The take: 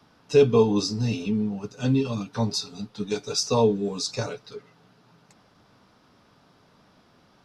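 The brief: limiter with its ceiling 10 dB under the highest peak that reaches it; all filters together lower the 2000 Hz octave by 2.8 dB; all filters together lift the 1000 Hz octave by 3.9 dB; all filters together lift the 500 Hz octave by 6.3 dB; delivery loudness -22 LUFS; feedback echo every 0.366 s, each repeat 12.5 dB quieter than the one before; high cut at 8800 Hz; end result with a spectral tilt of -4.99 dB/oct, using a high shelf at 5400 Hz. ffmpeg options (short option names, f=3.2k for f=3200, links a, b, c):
-af "lowpass=8.8k,equalizer=f=500:t=o:g=7,equalizer=f=1k:t=o:g=3.5,equalizer=f=2k:t=o:g=-6.5,highshelf=f=5.4k:g=3,alimiter=limit=-12dB:level=0:latency=1,aecho=1:1:366|732|1098:0.237|0.0569|0.0137,volume=2dB"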